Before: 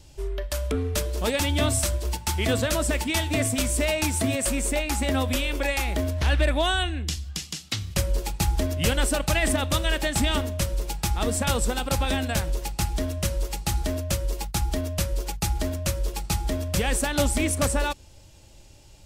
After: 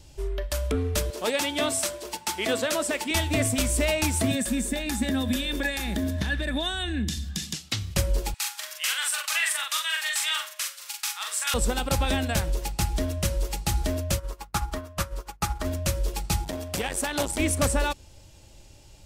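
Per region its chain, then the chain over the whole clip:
1.1–3.11 HPF 290 Hz + high shelf 12000 Hz -4.5 dB
4.31–7.54 high shelf 4400 Hz +6.5 dB + compressor, threshold -28 dBFS + small resonant body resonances 210/1700/3600 Hz, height 15 dB, ringing for 35 ms
8.34–11.54 HPF 1200 Hz 24 dB/oct + doubler 42 ms -3 dB + flutter echo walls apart 8.6 m, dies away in 0.21 s
14.18–15.64 bell 1200 Hz +14.5 dB 1 oct + buzz 100 Hz, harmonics 29, -52 dBFS -7 dB/oct + upward expander 2.5:1, over -34 dBFS
16.44–17.39 low shelf 130 Hz -11 dB + core saturation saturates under 810 Hz
whole clip: dry

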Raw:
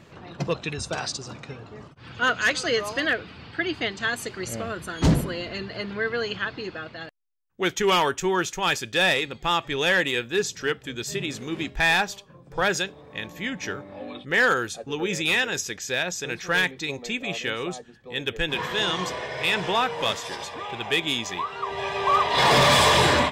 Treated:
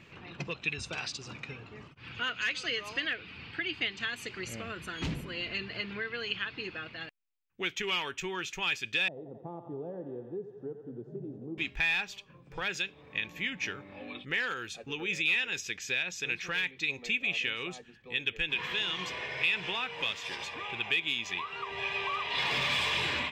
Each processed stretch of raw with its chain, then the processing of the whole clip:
9.08–11.58 elliptic band-pass 120–700 Hz, stop band 50 dB + thinning echo 88 ms, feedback 82%, high-pass 500 Hz, level -8 dB
whole clip: dynamic EQ 3300 Hz, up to +4 dB, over -36 dBFS, Q 1; compressor 3:1, threshold -30 dBFS; fifteen-band EQ 630 Hz -5 dB, 2500 Hz +11 dB, 10000 Hz -6 dB; gain -6 dB

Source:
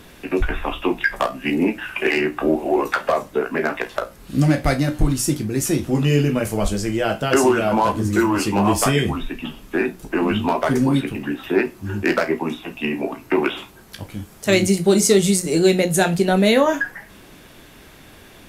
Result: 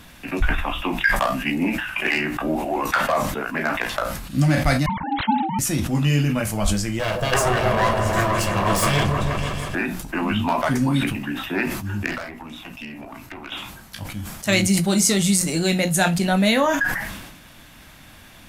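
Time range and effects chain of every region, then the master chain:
4.86–5.59 sine-wave speech + bell 190 Hz -12.5 dB 0.42 oct + ring modulator 550 Hz
6.99–9.75 minimum comb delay 1.8 ms + bell 380 Hz +5 dB 0.66 oct + repeats that get brighter 0.161 s, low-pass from 750 Hz, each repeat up 1 oct, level -3 dB
12.06–13.52 compressor, threshold -27 dBFS + tube stage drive 24 dB, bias 0.55
whole clip: bell 410 Hz -13 dB 0.66 oct; sustainer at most 48 dB/s

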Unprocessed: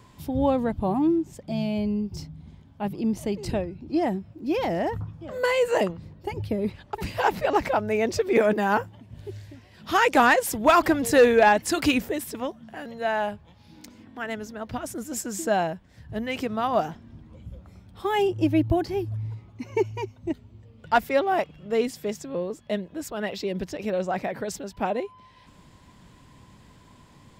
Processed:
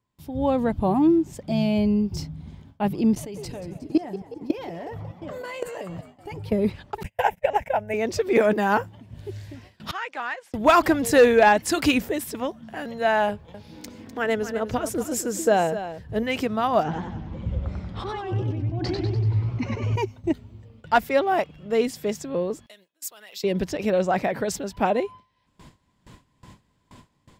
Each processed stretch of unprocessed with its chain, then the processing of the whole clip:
3.15–6.52 comb 6.9 ms, depth 41% + level quantiser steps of 20 dB + frequency-shifting echo 0.182 s, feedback 58%, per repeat +77 Hz, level -14 dB
7.03–7.94 gate -31 dBFS, range -33 dB + transient shaper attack +8 dB, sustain 0 dB + fixed phaser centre 1200 Hz, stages 6
9.91–10.54 LPF 1800 Hz + differentiator
13.29–16.23 bell 470 Hz +9 dB 0.4 oct + echo 0.251 s -11.5 dB
16.83–19.96 negative-ratio compressor -34 dBFS + air absorption 130 m + warbling echo 96 ms, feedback 51%, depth 149 cents, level -3 dB
22.66–23.44 compressor 12:1, threshold -29 dBFS + differentiator
whole clip: gate with hold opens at -41 dBFS; AGC gain up to 12 dB; gain -6.5 dB

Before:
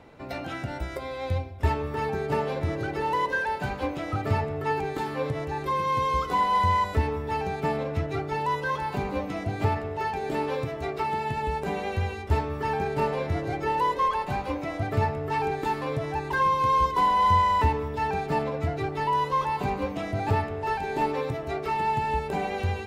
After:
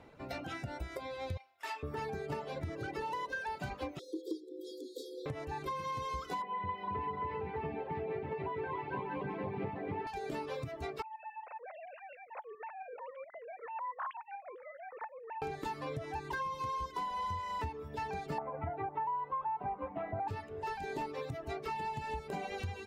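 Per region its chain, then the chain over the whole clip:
1.37–1.83 HPF 1100 Hz + flutter echo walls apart 5.4 m, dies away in 0.3 s
3.99–5.26 brick-wall FIR band-stop 310–3000 Hz + frequency shift +220 Hz
6.42–10.07 speaker cabinet 130–2600 Hz, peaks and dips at 150 Hz +7 dB, 400 Hz +6 dB, 600 Hz -5 dB, 1400 Hz -8 dB + bouncing-ball echo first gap 0.27 s, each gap 0.7×, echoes 5, each echo -2 dB
11.02–15.42 sine-wave speech + compressor 2:1, threshold -38 dBFS + tremolo saw up 7.2 Hz, depth 45%
18.38–20.28 LPF 2200 Hz 24 dB/oct + bell 870 Hz +14.5 dB 0.83 oct
whole clip: reverb removal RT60 0.74 s; dynamic EQ 5700 Hz, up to +5 dB, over -50 dBFS, Q 1.1; compressor, threshold -30 dBFS; gain -5.5 dB

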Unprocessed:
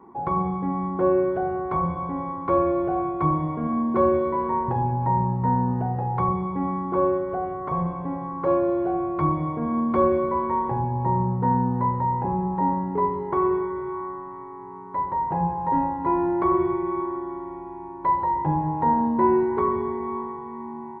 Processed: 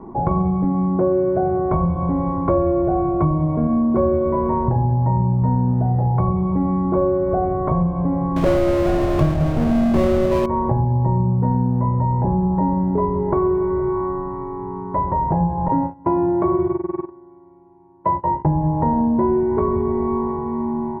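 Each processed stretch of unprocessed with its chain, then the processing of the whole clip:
0.64–1.71 HPF 96 Hz + air absorption 190 m
8.36–10.46 half-waves squared off + feedback echo 0.108 s, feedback 52%, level -11 dB
15.68–18.45 gate -25 dBFS, range -25 dB + HPF 87 Hz 24 dB/oct
whole clip: tilt -4 dB/oct; compressor 4:1, threshold -23 dBFS; bell 630 Hz +11 dB 0.22 oct; gain +6 dB

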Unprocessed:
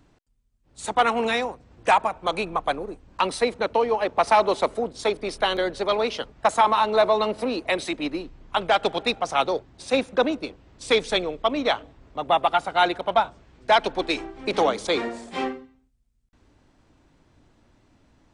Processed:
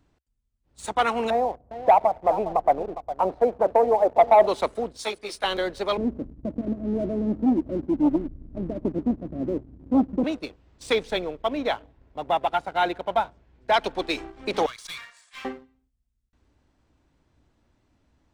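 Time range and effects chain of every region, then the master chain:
1.3–4.47 synth low-pass 710 Hz, resonance Q 3.4 + echo 0.409 s -13 dB
4.97–5.44 tilt +2.5 dB/oct + ensemble effect
5.97–10.24 steep low-pass 620 Hz 96 dB/oct + resonant low shelf 370 Hz +8 dB, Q 3 + core saturation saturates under 440 Hz
10.93–13.74 high shelf 3800 Hz -10 dB + notch 1200 Hz, Q 8.2
14.66–15.45 HPF 1300 Hz 24 dB/oct + comb 1.8 ms, depth 43% + tube stage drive 29 dB, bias 0.3
whole clip: bell 66 Hz +7.5 dB 0.47 oct; sample leveller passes 1; gain -6 dB

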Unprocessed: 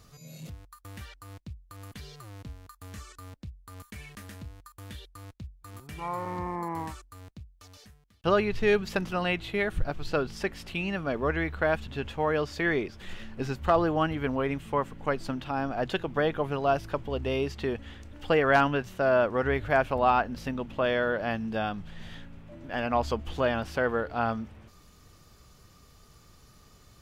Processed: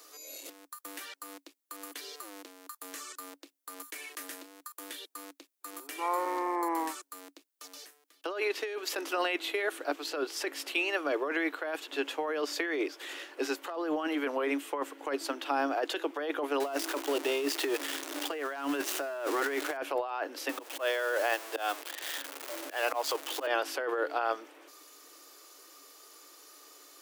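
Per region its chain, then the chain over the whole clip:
16.6–19.77 zero-crossing step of -33 dBFS + high shelf 12000 Hz -6 dB + notch 510 Hz, Q 8.8
20.49–23.47 zero-crossing step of -36.5 dBFS + HPF 450 Hz + auto swell 0.158 s
whole clip: Chebyshev high-pass 280 Hz, order 8; high shelf 6800 Hz +11 dB; negative-ratio compressor -31 dBFS, ratio -1

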